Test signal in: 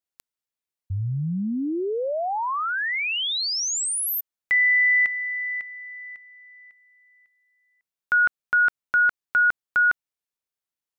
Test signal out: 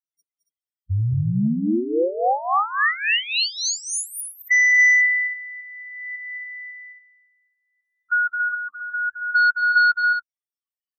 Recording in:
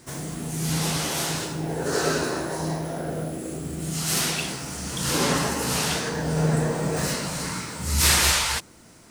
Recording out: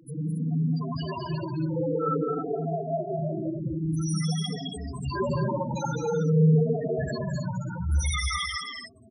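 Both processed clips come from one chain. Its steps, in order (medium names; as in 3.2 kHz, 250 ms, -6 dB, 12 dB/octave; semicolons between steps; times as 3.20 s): drifting ripple filter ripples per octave 1.4, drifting -0.5 Hz, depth 22 dB; saturation -13.5 dBFS; loudest bins only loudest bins 4; on a send: loudspeakers at several distances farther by 74 m -7 dB, 95 m -8 dB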